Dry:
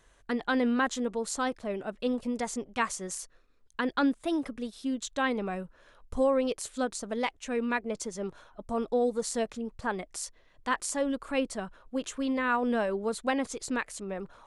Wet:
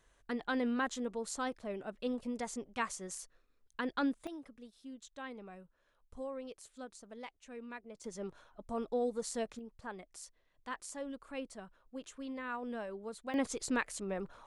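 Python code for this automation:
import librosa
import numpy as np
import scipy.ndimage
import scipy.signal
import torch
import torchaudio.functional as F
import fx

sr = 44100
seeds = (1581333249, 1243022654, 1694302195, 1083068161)

y = fx.gain(x, sr, db=fx.steps((0.0, -7.0), (4.27, -17.0), (8.04, -7.0), (9.59, -13.0), (13.34, -2.0)))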